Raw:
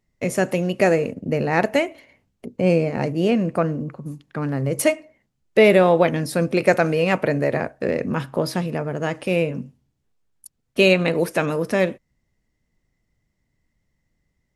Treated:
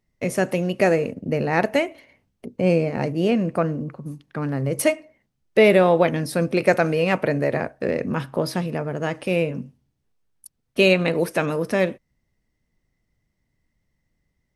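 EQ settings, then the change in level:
notch filter 7,100 Hz, Q 11
−1.0 dB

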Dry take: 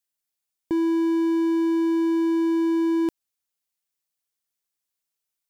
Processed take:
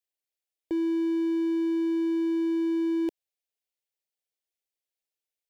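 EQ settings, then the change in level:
bass and treble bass −8 dB, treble −9 dB
phaser with its sweep stopped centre 480 Hz, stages 4
0.0 dB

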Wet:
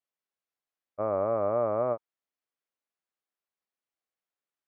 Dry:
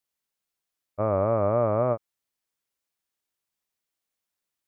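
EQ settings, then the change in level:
high-pass filter 490 Hz 6 dB per octave
low-pass filter 1,200 Hz 6 dB per octave
notch filter 920 Hz, Q 18
0.0 dB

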